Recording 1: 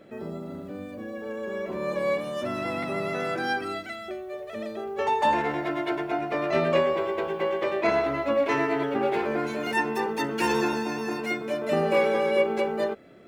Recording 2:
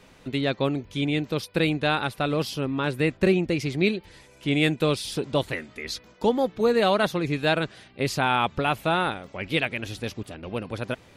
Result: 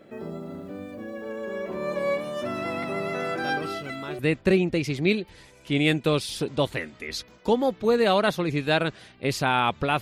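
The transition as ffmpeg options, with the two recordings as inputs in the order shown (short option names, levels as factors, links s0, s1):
-filter_complex "[1:a]asplit=2[s0][s1];[0:a]apad=whole_dur=10.01,atrim=end=10.01,atrim=end=4.192[s2];[s1]atrim=start=2.948:end=8.77[s3];[s0]atrim=start=2.17:end=2.95,asetpts=PTS-STARTPTS,volume=0.282,afade=t=in:d=0.004:c=hsin,afade=t=out:st=0.776:d=0.004:c=hsin,adelay=150381S[s4];[s2][s3]acrossfade=d=0.004:c1=hsin:c2=hsin[s5];[s5][s4]amix=inputs=2:normalize=0"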